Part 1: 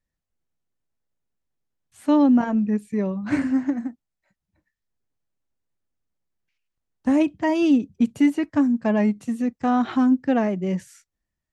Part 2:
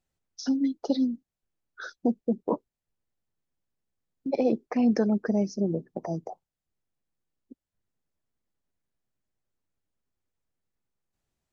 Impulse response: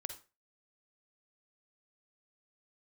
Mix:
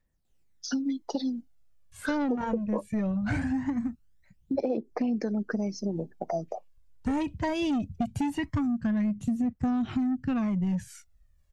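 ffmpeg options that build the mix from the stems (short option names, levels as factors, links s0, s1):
-filter_complex "[0:a]asubboost=boost=7.5:cutoff=140,asoftclip=type=tanh:threshold=0.15,volume=1.06[s0];[1:a]lowshelf=f=150:g=-8.5,adelay=250,volume=1.19[s1];[s0][s1]amix=inputs=2:normalize=0,aphaser=in_gain=1:out_gain=1:delay=2.2:decay=0.53:speed=0.21:type=triangular,acompressor=threshold=0.0562:ratio=10"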